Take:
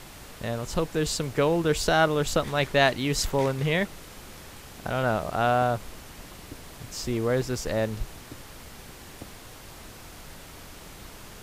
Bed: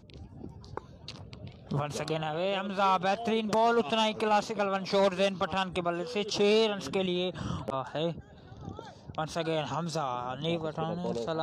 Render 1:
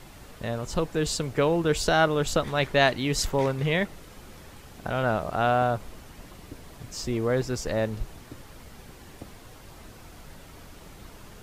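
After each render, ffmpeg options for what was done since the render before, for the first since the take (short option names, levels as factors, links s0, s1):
-af "afftdn=nr=6:nf=-46"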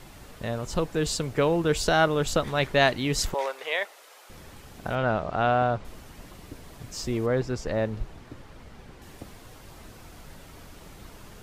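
-filter_complex "[0:a]asettb=1/sr,asplit=3[s0][s1][s2];[s0]atrim=end=3.344[s3];[s1]atrim=start=3.34:end=4.3,asetpts=PTS-STARTPTS,afade=t=in:d=0.004:c=qsin,afade=t=out:st=0.956:d=0.004:c=qsin,highpass=f=530:w=0.5412,highpass=f=530:w=1.3066[s4];[s2]atrim=start=4.296[s5];[s3][s4]acrossfade=d=0.004:c1=hsin:c2=qsin[s6];[s6][s5]acrossfade=d=0.004:c1=qsin:c2=hsin,asettb=1/sr,asplit=3[s7][s8][s9];[s7]atrim=end=4.954[s10];[s8]atrim=start=4.95:end=5.85,asetpts=PTS-STARTPTS,afade=t=in:d=0.004:c=qsin,afade=t=out:st=0.896:d=0.004:c=qsin,lowpass=4600[s11];[s9]atrim=start=5.846[s12];[s10][s11]acrossfade=d=0.004:c1=hsin:c2=qsin[s13];[s13][s12]acrossfade=d=0.004:c1=qsin:c2=hsin,asettb=1/sr,asplit=3[s14][s15][s16];[s14]atrim=end=7.264[s17];[s15]atrim=start=7.26:end=9.02,asetpts=PTS-STARTPTS,afade=t=in:d=0.004:c=qsin,afade=t=out:st=1.756:d=0.004:c=qsin,aemphasis=mode=reproduction:type=50kf[s18];[s16]atrim=start=9.016[s19];[s17][s18]acrossfade=d=0.004:c1=hsin:c2=qsin[s20];[s20][s19]acrossfade=d=0.004:c1=qsin:c2=hsin"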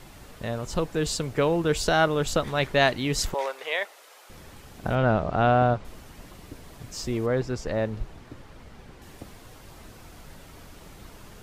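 -filter_complex "[0:a]asettb=1/sr,asplit=3[s0][s1][s2];[s0]atrim=end=4.834[s3];[s1]atrim=start=4.83:end=5.74,asetpts=PTS-STARTPTS,afade=t=in:d=0.004:c=qsin,afade=t=out:st=0.906:d=0.004:c=qsin,lowshelf=f=480:g=6.5[s4];[s2]atrim=start=5.736[s5];[s3][s4]acrossfade=d=0.004:c1=hsin:c2=qsin[s6];[s6][s5]acrossfade=d=0.004:c1=qsin:c2=hsin"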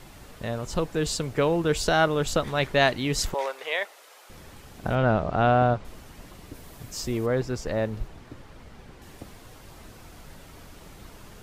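-filter_complex "[0:a]asettb=1/sr,asplit=3[s0][s1][s2];[s0]atrim=end=6.544[s3];[s1]atrim=start=6.54:end=8.08,asetpts=PTS-STARTPTS,afade=t=in:d=0.004:c=qsin,afade=t=out:st=1.536:d=0.004:c=qsin,highshelf=f=12000:g=10.5[s4];[s2]atrim=start=8.076[s5];[s3][s4]acrossfade=d=0.004:c1=hsin:c2=qsin[s6];[s6][s5]acrossfade=d=0.004:c1=qsin:c2=hsin"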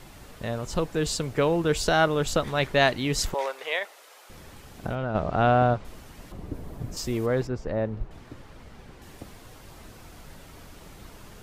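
-filter_complex "[0:a]asplit=3[s0][s1][s2];[s0]afade=t=out:st=3.78:d=0.02[s3];[s1]acompressor=threshold=0.0631:ratio=6:attack=3.2:release=140:knee=1:detection=peak,afade=t=in:st=3.78:d=0.02,afade=t=out:st=5.14:d=0.02[s4];[s2]afade=t=in:st=5.14:d=0.02[s5];[s3][s4][s5]amix=inputs=3:normalize=0,asettb=1/sr,asplit=3[s6][s7][s8];[s6]atrim=end=6.324[s9];[s7]atrim=start=6.32:end=6.97,asetpts=PTS-STARTPTS,afade=t=in:d=0.004:c=qsin,afade=t=out:st=0.646:d=0.004:c=qsin,tiltshelf=f=1200:g=8.5[s10];[s8]atrim=start=6.966[s11];[s9][s10]acrossfade=d=0.004:c1=hsin:c2=qsin[s12];[s12][s11]acrossfade=d=0.004:c1=qsin:c2=hsin,asettb=1/sr,asplit=3[s13][s14][s15];[s13]atrim=end=7.474[s16];[s14]atrim=start=7.47:end=8.11,asetpts=PTS-STARTPTS,afade=t=in:d=0.004:c=qsin,afade=t=out:st=0.636:d=0.004:c=qsin,lowpass=f=1200:p=1[s17];[s15]atrim=start=8.106[s18];[s16][s17]acrossfade=d=0.004:c1=hsin:c2=qsin[s19];[s19][s18]acrossfade=d=0.004:c1=qsin:c2=hsin"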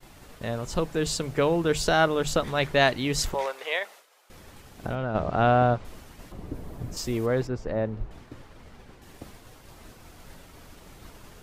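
-af "agate=range=0.0224:threshold=0.00708:ratio=3:detection=peak,bandreject=f=50:t=h:w=6,bandreject=f=100:t=h:w=6,bandreject=f=150:t=h:w=6,bandreject=f=200:t=h:w=6"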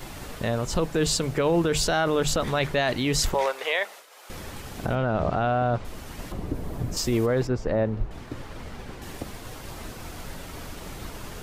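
-filter_complex "[0:a]asplit=2[s0][s1];[s1]acompressor=mode=upward:threshold=0.0398:ratio=2.5,volume=0.794[s2];[s0][s2]amix=inputs=2:normalize=0,alimiter=limit=0.2:level=0:latency=1:release=20"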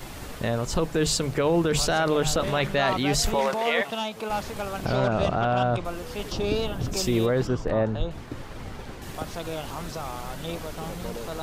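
-filter_complex "[1:a]volume=0.708[s0];[0:a][s0]amix=inputs=2:normalize=0"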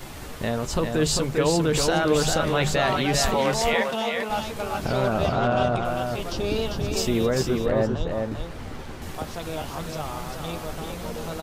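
-filter_complex "[0:a]asplit=2[s0][s1];[s1]adelay=13,volume=0.266[s2];[s0][s2]amix=inputs=2:normalize=0,aecho=1:1:397:0.596"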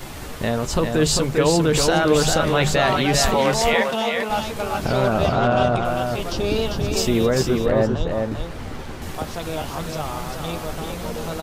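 -af "volume=1.58"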